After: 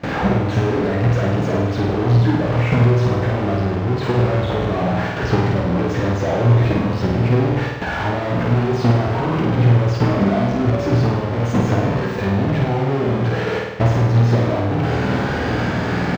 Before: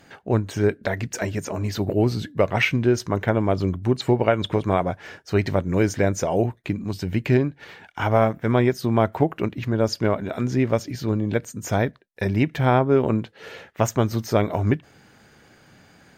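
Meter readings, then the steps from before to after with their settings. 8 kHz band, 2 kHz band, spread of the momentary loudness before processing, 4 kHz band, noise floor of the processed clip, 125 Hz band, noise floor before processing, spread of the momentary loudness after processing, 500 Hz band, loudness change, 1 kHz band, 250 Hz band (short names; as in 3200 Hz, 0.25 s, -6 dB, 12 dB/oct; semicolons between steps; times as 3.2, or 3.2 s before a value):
n/a, +4.5 dB, 8 LU, +3.0 dB, -23 dBFS, +8.5 dB, -54 dBFS, 5 LU, +2.0 dB, +4.5 dB, +4.0 dB, +4.5 dB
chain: infinite clipping; high shelf 4800 Hz +6 dB; de-esser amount 85%; transient shaper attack +11 dB, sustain -2 dB; HPF 47 Hz 12 dB/oct; air absorption 180 m; on a send: early reflections 16 ms -8.5 dB, 26 ms -12.5 dB; on the sum: gate with hold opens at -19 dBFS; in parallel at -2.5 dB: level quantiser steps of 21 dB; on the sum: flutter echo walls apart 8.7 m, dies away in 1 s; gain +1.5 dB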